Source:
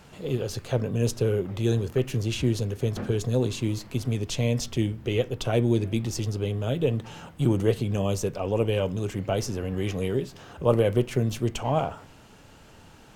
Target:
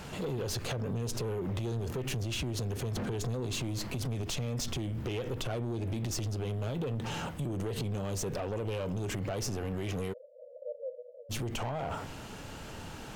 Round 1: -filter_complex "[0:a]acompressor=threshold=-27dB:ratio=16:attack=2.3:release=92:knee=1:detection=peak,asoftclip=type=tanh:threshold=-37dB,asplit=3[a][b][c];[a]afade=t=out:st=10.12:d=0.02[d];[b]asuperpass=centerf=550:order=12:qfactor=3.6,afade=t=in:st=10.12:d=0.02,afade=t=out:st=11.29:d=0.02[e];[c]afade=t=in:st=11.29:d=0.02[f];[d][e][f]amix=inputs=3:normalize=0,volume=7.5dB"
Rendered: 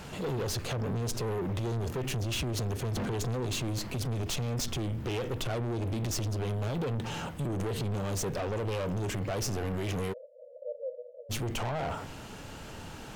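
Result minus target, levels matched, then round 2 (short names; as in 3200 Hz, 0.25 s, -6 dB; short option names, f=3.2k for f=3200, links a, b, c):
compressor: peak gain reduction -6 dB
-filter_complex "[0:a]acompressor=threshold=-33.5dB:ratio=16:attack=2.3:release=92:knee=1:detection=peak,asoftclip=type=tanh:threshold=-37dB,asplit=3[a][b][c];[a]afade=t=out:st=10.12:d=0.02[d];[b]asuperpass=centerf=550:order=12:qfactor=3.6,afade=t=in:st=10.12:d=0.02,afade=t=out:st=11.29:d=0.02[e];[c]afade=t=in:st=11.29:d=0.02[f];[d][e][f]amix=inputs=3:normalize=0,volume=7.5dB"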